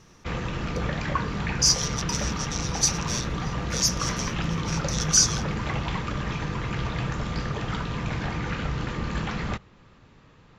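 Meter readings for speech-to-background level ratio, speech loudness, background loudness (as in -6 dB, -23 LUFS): 5.0 dB, -25.0 LUFS, -30.0 LUFS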